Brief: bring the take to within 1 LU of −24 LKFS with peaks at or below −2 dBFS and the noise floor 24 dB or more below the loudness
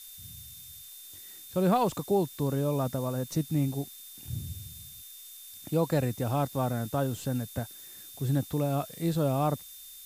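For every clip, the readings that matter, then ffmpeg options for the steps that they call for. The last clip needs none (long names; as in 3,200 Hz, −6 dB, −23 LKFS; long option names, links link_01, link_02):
interfering tone 3,600 Hz; level of the tone −53 dBFS; background noise floor −48 dBFS; target noise floor −54 dBFS; integrated loudness −30.0 LKFS; sample peak −15.0 dBFS; target loudness −24.0 LKFS
→ -af "bandreject=frequency=3600:width=30"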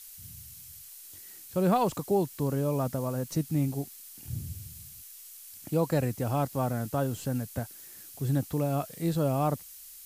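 interfering tone none found; background noise floor −48 dBFS; target noise floor −54 dBFS
→ -af "afftdn=noise_reduction=6:noise_floor=-48"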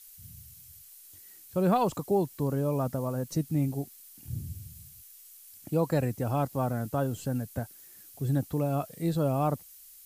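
background noise floor −52 dBFS; target noise floor −54 dBFS
→ -af "afftdn=noise_reduction=6:noise_floor=-52"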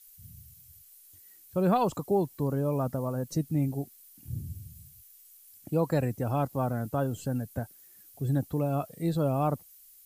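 background noise floor −56 dBFS; integrated loudness −30.0 LKFS; sample peak −15.0 dBFS; target loudness −24.0 LKFS
→ -af "volume=6dB"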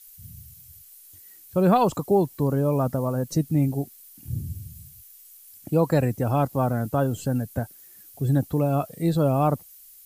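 integrated loudness −24.0 LKFS; sample peak −9.0 dBFS; background noise floor −50 dBFS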